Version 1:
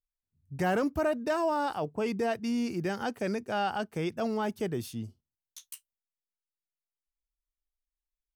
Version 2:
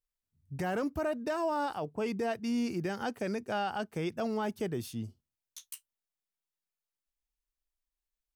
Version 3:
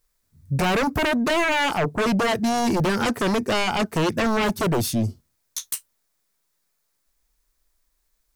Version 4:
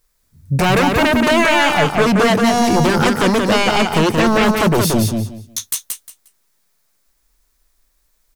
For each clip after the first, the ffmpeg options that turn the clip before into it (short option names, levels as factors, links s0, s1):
-af "alimiter=level_in=1.12:limit=0.0631:level=0:latency=1:release=347,volume=0.891"
-af "equalizer=f=2900:w=2.9:g=-7,aeval=exprs='0.0631*sin(PI/2*2.82*val(0)/0.0631)':c=same,bandreject=f=790:w=12,volume=2.11"
-af "aecho=1:1:178|356|534:0.631|0.139|0.0305,volume=2.11"